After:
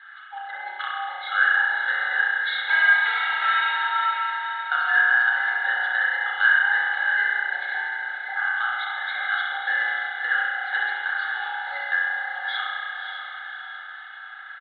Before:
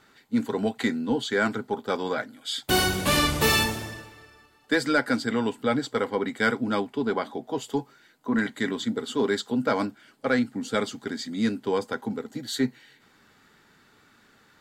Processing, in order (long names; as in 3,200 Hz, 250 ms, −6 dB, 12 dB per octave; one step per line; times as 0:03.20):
frequency inversion band by band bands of 1,000 Hz
Chebyshev low-pass filter 4,100 Hz, order 8
notch filter 2,500 Hz, Q 8.2
comb filter 2.4 ms, depth 82%
downward compressor 4 to 1, threshold −32 dBFS, peak gain reduction 14.5 dB
high-pass with resonance 1,500 Hz, resonance Q 12
on a send: feedback delay with all-pass diffusion 581 ms, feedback 45%, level −6.5 dB
on the sum: spring reverb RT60 1.8 s, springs 30 ms, chirp 45 ms, DRR −4.5 dB